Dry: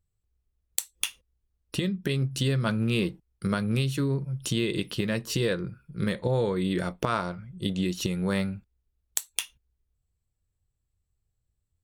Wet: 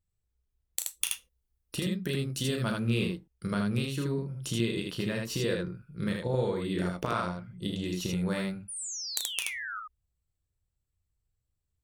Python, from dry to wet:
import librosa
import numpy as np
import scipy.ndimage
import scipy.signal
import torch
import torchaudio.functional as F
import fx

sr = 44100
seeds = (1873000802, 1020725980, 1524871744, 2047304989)

y = fx.high_shelf(x, sr, hz=8100.0, db=8.5, at=(0.79, 2.8))
y = fx.spec_paint(y, sr, seeds[0], shape='fall', start_s=8.68, length_s=1.12, low_hz=1200.0, high_hz=10000.0, level_db=-34.0)
y = fx.room_early_taps(y, sr, ms=(34, 78), db=(-7.0, -3.0))
y = y * librosa.db_to_amplitude(-5.5)